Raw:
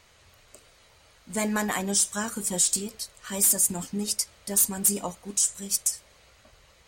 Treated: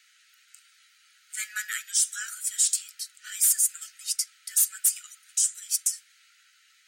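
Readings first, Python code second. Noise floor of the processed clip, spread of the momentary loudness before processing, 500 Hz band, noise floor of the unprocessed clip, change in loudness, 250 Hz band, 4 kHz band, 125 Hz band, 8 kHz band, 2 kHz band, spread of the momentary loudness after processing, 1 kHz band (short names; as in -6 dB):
-62 dBFS, 12 LU, under -40 dB, -59 dBFS, -0.5 dB, under -40 dB, -0.5 dB, under -40 dB, 0.0 dB, -0.5 dB, 15 LU, under -15 dB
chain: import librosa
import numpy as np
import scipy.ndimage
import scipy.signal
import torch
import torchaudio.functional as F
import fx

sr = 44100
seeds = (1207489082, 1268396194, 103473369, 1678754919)

y = scipy.signal.sosfilt(scipy.signal.cheby1(10, 1.0, 1300.0, 'highpass', fs=sr, output='sos'), x)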